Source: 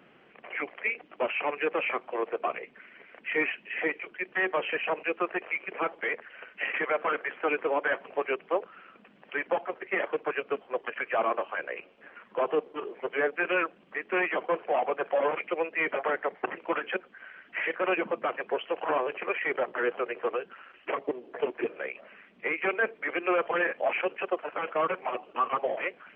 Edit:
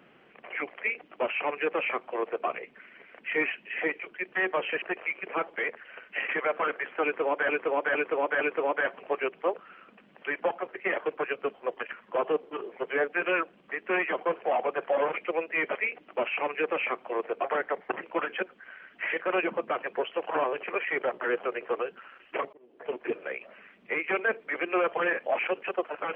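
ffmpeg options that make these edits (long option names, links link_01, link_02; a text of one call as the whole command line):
ffmpeg -i in.wav -filter_complex "[0:a]asplit=9[link_01][link_02][link_03][link_04][link_05][link_06][link_07][link_08][link_09];[link_01]atrim=end=4.822[link_10];[link_02]atrim=start=5.268:end=7.942[link_11];[link_03]atrim=start=7.478:end=7.942[link_12];[link_04]atrim=start=7.478:end=7.942[link_13];[link_05]atrim=start=7.478:end=11.002[link_14];[link_06]atrim=start=12.158:end=15.982[link_15];[link_07]atrim=start=0.778:end=2.472[link_16];[link_08]atrim=start=15.978:end=21.07,asetpts=PTS-STARTPTS,afade=type=out:start_time=5.088:duration=0.004:curve=hsin[link_17];[link_09]atrim=start=21.07,asetpts=PTS-STARTPTS,afade=type=in:duration=0.6[link_18];[link_10][link_11]acrossfade=duration=0.004:curve1=hsin:curve2=hsin[link_19];[link_19][link_12]acrossfade=duration=0.004:curve1=hsin:curve2=hsin[link_20];[link_20][link_13]acrossfade=duration=0.004:curve1=hsin:curve2=hsin[link_21];[link_21][link_14]acrossfade=duration=0.004:curve1=hsin:curve2=hsin[link_22];[link_22][link_15]acrossfade=duration=0.004:curve1=hsin:curve2=hsin[link_23];[link_23][link_16]acrossfade=duration=0.004:curve1=hsin:curve2=hsin[link_24];[link_17][link_18]concat=n=2:v=0:a=1[link_25];[link_24][link_25]acrossfade=duration=0.004:curve1=hsin:curve2=hsin" out.wav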